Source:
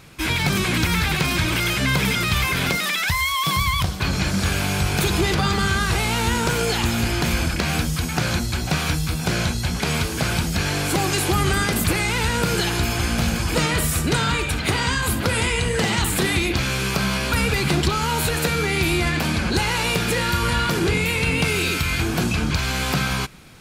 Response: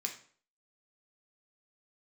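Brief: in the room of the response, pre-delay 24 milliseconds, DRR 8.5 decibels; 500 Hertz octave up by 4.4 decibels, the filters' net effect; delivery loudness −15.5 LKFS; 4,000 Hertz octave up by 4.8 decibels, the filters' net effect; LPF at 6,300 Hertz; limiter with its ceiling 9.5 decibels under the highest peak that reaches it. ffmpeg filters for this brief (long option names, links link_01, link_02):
-filter_complex "[0:a]lowpass=6300,equalizer=frequency=500:width_type=o:gain=5.5,equalizer=frequency=4000:width_type=o:gain=6.5,alimiter=limit=-13dB:level=0:latency=1,asplit=2[link_01][link_02];[1:a]atrim=start_sample=2205,adelay=24[link_03];[link_02][link_03]afir=irnorm=-1:irlink=0,volume=-9dB[link_04];[link_01][link_04]amix=inputs=2:normalize=0,volume=5.5dB"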